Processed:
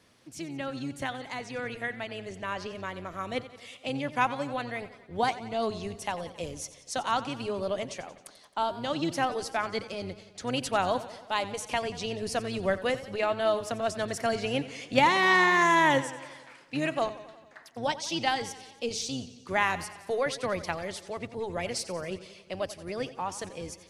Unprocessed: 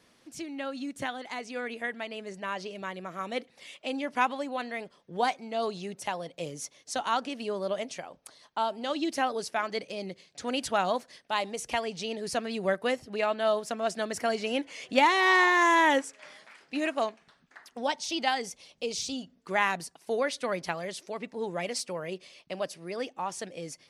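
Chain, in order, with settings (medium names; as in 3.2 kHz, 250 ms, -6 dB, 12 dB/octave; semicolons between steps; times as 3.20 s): octave divider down 1 oct, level -5 dB; modulated delay 90 ms, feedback 63%, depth 77 cents, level -15.5 dB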